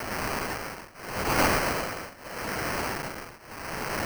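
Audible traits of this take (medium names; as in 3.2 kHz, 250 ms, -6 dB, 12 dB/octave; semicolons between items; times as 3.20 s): a quantiser's noise floor 6-bit, dither triangular; tremolo triangle 0.81 Hz, depth 95%; aliases and images of a low sample rate 3.6 kHz, jitter 0%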